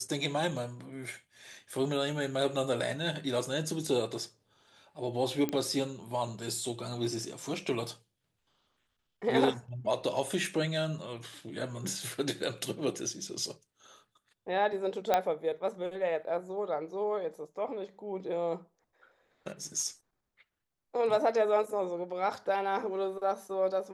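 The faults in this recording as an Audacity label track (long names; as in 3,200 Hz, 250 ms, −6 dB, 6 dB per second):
5.490000	5.490000	click −18 dBFS
15.140000	15.140000	click −12 dBFS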